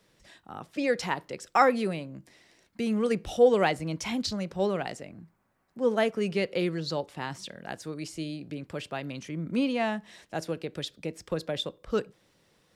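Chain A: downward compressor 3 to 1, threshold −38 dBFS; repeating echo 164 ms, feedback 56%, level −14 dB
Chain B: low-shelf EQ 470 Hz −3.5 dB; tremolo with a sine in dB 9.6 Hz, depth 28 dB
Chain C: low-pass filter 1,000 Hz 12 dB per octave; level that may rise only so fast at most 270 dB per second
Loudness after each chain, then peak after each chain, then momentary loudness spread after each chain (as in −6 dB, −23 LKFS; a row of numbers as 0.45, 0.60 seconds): −40.0, −37.0, −32.0 LKFS; −22.0, −12.5, −12.0 dBFS; 10, 16, 18 LU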